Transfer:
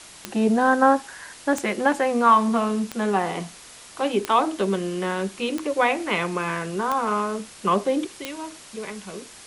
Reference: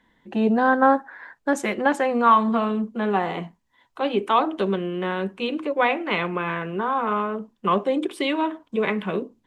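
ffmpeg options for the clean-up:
ffmpeg -i in.wav -af "adeclick=threshold=4,afwtdn=0.0079,asetnsamples=nb_out_samples=441:pad=0,asendcmd='8.05 volume volume 11dB',volume=0dB" out.wav

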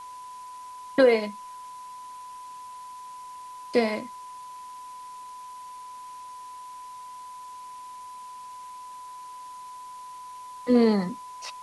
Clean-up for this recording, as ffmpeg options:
ffmpeg -i in.wav -af "adeclick=threshold=4,bandreject=frequency=1000:width=30,afwtdn=0.0022" out.wav

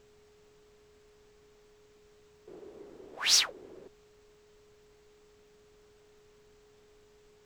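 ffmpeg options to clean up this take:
ffmpeg -i in.wav -af "adeclick=threshold=4,bandreject=frequency=420:width=30,agate=range=-21dB:threshold=-54dB" out.wav

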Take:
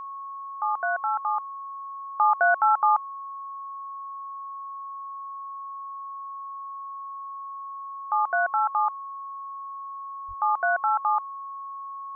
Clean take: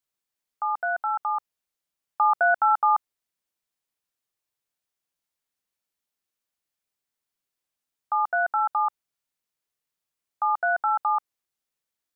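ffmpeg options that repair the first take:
ffmpeg -i in.wav -filter_complex "[0:a]bandreject=frequency=1100:width=30,asplit=3[link_01][link_02][link_03];[link_01]afade=type=out:start_time=10.27:duration=0.02[link_04];[link_02]highpass=frequency=140:width=0.5412,highpass=frequency=140:width=1.3066,afade=type=in:start_time=10.27:duration=0.02,afade=type=out:start_time=10.39:duration=0.02[link_05];[link_03]afade=type=in:start_time=10.39:duration=0.02[link_06];[link_04][link_05][link_06]amix=inputs=3:normalize=0" out.wav

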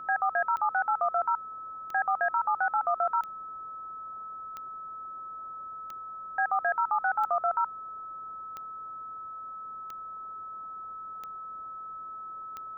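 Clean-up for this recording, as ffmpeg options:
ffmpeg -i in.wav -af "adeclick=threshold=4,bandreject=frequency=1300:width=30,afftdn=noise_reduction=30:noise_floor=-41" out.wav

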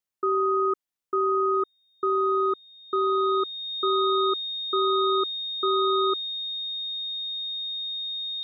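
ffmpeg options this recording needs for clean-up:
ffmpeg -i in.wav -af "bandreject=frequency=3700:width=30" out.wav

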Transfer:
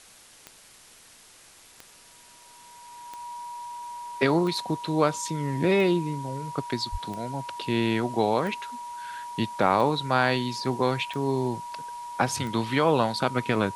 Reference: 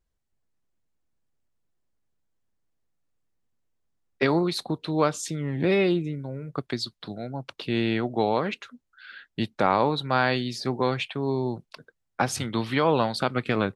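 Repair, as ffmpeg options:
ffmpeg -i in.wav -filter_complex "[0:a]adeclick=threshold=4,bandreject=frequency=960:width=30,asplit=3[link_01][link_02][link_03];[link_01]afade=type=out:start_time=6.91:duration=0.02[link_04];[link_02]highpass=frequency=140:width=0.5412,highpass=frequency=140:width=1.3066,afade=type=in:start_time=6.91:duration=0.02,afade=type=out:start_time=7.03:duration=0.02[link_05];[link_03]afade=type=in:start_time=7.03:duration=0.02[link_06];[link_04][link_05][link_06]amix=inputs=3:normalize=0,afwtdn=0.0032" out.wav

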